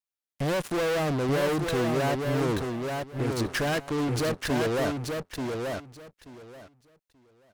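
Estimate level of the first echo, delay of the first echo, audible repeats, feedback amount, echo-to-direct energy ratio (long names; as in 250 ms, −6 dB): −4.5 dB, 882 ms, 3, 18%, −4.5 dB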